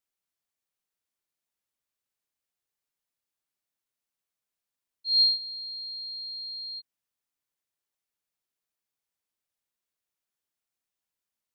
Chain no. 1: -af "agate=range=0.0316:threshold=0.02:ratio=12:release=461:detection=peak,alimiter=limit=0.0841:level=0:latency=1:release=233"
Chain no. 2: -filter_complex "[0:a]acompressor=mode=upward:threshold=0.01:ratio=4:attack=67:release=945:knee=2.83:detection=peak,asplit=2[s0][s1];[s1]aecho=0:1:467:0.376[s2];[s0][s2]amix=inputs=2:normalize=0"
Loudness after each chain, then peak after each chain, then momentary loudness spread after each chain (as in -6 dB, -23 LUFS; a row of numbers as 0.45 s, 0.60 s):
-27.0 LUFS, -27.5 LUFS; -21.5 dBFS, -9.5 dBFS; 16 LU, 23 LU